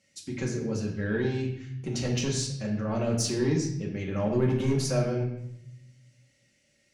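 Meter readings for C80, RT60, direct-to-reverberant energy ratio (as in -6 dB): 8.5 dB, 0.75 s, -1.5 dB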